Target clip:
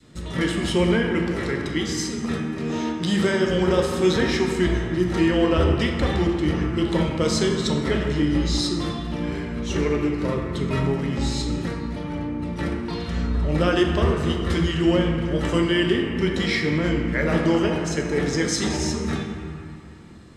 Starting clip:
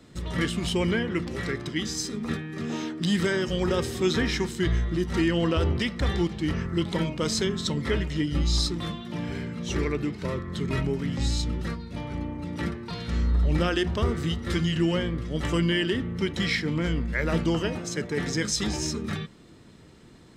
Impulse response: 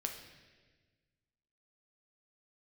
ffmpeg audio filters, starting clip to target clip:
-filter_complex "[0:a]adynamicequalizer=threshold=0.0126:dfrequency=620:dqfactor=0.74:tfrequency=620:tqfactor=0.74:attack=5:release=100:ratio=0.375:range=2.5:mode=boostabove:tftype=bell[a];[1:a]atrim=start_sample=2205,asetrate=23373,aresample=44100[b];[a][b]afir=irnorm=-1:irlink=0,volume=-1dB"

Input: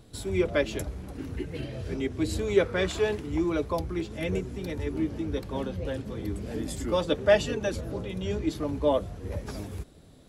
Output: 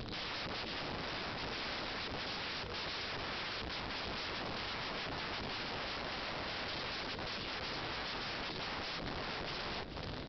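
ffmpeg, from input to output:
-af "acompressor=threshold=-40dB:ratio=8,aresample=11025,aeval=exprs='(mod(224*val(0)+1,2)-1)/224':c=same,aresample=44100,aecho=1:1:435:0.282,volume=10.5dB"

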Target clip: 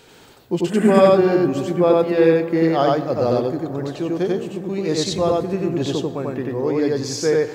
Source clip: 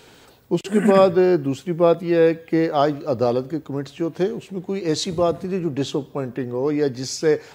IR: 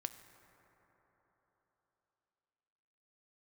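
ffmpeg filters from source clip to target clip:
-filter_complex "[0:a]asplit=2[a][b];[1:a]atrim=start_sample=2205,adelay=92[c];[b][c]afir=irnorm=-1:irlink=0,volume=2dB[d];[a][d]amix=inputs=2:normalize=0,volume=-1dB"

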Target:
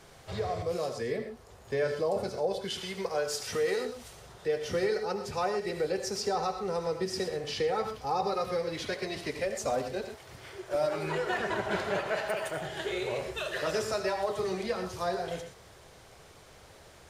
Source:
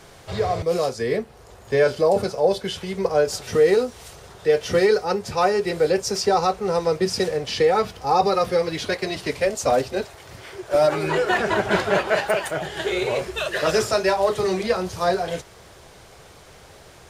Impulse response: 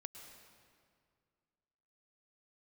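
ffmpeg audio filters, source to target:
-filter_complex "[0:a]asettb=1/sr,asplit=3[a][b][c];[a]atrim=end=2.704[d];[b]atrim=start=2.7:end=3.85,asetpts=PTS-STARTPTS,afade=t=in:d=0.004:c=qsin,afade=t=out:st=1.146:d=0.004:c=qsin,tiltshelf=f=700:g=-5[e];[c]atrim=start=3.846[f];[d][e]acrossfade=d=0.004:c1=hsin:c2=qsin[g];[g][f]acrossfade=d=0.004:c1=qsin:c2=hsin[h];[1:a]atrim=start_sample=2205,afade=t=out:st=0.25:d=0.01,atrim=end_sample=11466,asetrate=66150,aresample=44100[i];[h][i]afir=irnorm=-1:irlink=0,asplit=2[j][k];[k]acompressor=threshold=-34dB:ratio=6,volume=1.5dB[l];[j][l]amix=inputs=2:normalize=0,volume=-5dB"

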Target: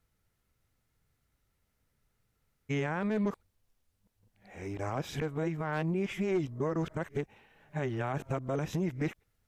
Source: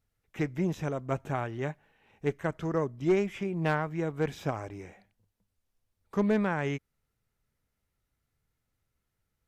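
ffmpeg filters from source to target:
-af "areverse,alimiter=level_in=3.5dB:limit=-24dB:level=0:latency=1:release=110,volume=-3.5dB,volume=4dB"

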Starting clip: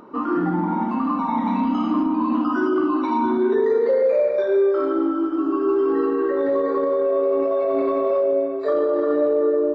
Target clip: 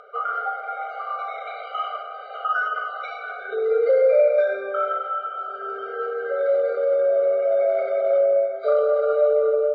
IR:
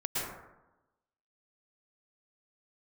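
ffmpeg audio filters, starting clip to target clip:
-filter_complex "[0:a]acrossover=split=580 3400:gain=0.2 1 0.2[a][b][c];[a][b][c]amix=inputs=3:normalize=0,afftfilt=real='re*eq(mod(floor(b*sr/1024/400),2),1)':imag='im*eq(mod(floor(b*sr/1024/400),2),1)':win_size=1024:overlap=0.75,volume=7dB"

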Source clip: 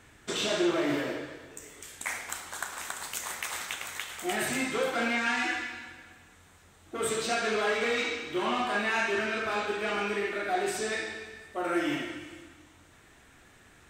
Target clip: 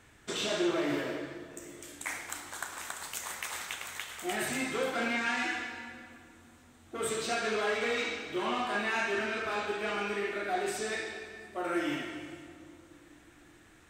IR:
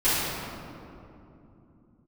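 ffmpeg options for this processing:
-filter_complex "[0:a]asplit=2[a][b];[1:a]atrim=start_sample=2205,adelay=122[c];[b][c]afir=irnorm=-1:irlink=0,volume=-30.5dB[d];[a][d]amix=inputs=2:normalize=0,volume=-3dB"

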